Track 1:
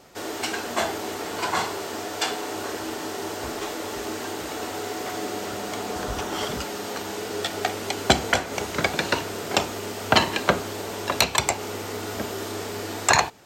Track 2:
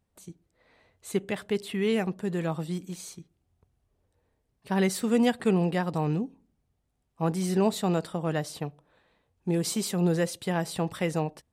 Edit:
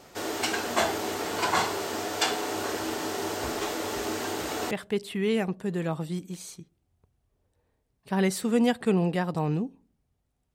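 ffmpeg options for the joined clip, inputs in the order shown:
-filter_complex "[0:a]apad=whole_dur=10.54,atrim=end=10.54,atrim=end=4.712[a];[1:a]atrim=start=1.298:end=7.13[b];[a][b]acrossfade=d=0.004:c1=hsin:c2=hsin"

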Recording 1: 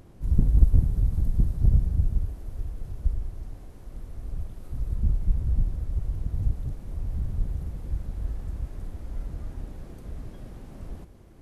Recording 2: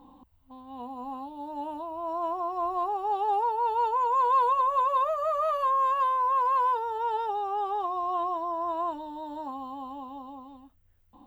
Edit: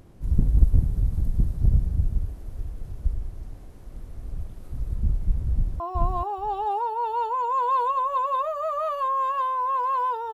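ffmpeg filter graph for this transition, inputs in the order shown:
-filter_complex "[0:a]apad=whole_dur=10.33,atrim=end=10.33,atrim=end=5.802[a];[1:a]atrim=start=2.418:end=6.95[b];[a][b]acrossfade=d=0.004:c1=hsin:c2=hsin,asplit=2[c][d];[d]afade=t=in:st=5.52:d=0.01,afade=t=out:st=5.8:d=0.01,aecho=0:1:430|860:0.944061|0.0944061[e];[c][e]amix=inputs=2:normalize=0"

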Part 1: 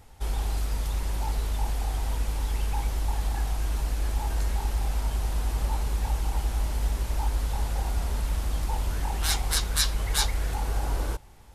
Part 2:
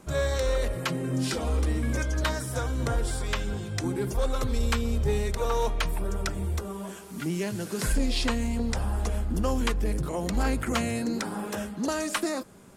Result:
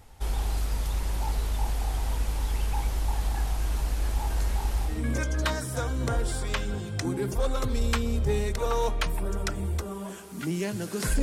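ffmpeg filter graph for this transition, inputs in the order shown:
-filter_complex "[0:a]apad=whole_dur=11.22,atrim=end=11.22,atrim=end=5.05,asetpts=PTS-STARTPTS[a];[1:a]atrim=start=1.6:end=8.01,asetpts=PTS-STARTPTS[b];[a][b]acrossfade=d=0.24:c1=tri:c2=tri"

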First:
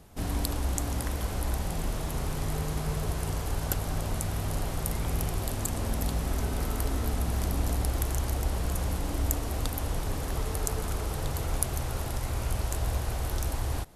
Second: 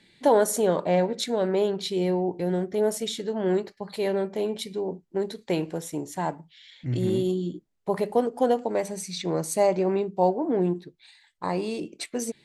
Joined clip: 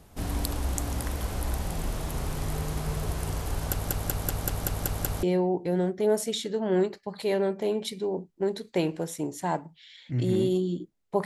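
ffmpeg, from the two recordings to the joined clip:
-filter_complex "[0:a]apad=whole_dur=11.25,atrim=end=11.25,asplit=8[a][b][c][d][e][f][g][h];[a]atrim=end=3.902[i];[b]atrim=start=3.708:end=3.902[j];[c]atrim=start=3.708:end=3.902[k];[d]atrim=start=3.708:end=3.902[l];[e]atrim=start=3.708:end=3.902[m];[f]atrim=start=3.708:end=3.902[n];[g]atrim=start=3.708:end=3.902[o];[h]atrim=start=3.708:end=3.902[p];[1:a]atrim=start=1.968:end=7.99[q];[i][j]acrossfade=d=0.004:c1=hsin:c2=hsin[r];[r][k]acrossfade=d=0.004:c1=hsin:c2=hsin[s];[s][l]acrossfade=d=0.004:c1=hsin:c2=hsin[t];[t][m]acrossfade=d=0.004:c1=hsin:c2=hsin[u];[u][n]acrossfade=d=0.004:c1=hsin:c2=hsin[v];[v][o]acrossfade=d=0.004:c1=hsin:c2=hsin[w];[w][p]acrossfade=d=0.004:c1=hsin:c2=hsin[x];[x][q]acrossfade=d=0.004:c1=hsin:c2=hsin"

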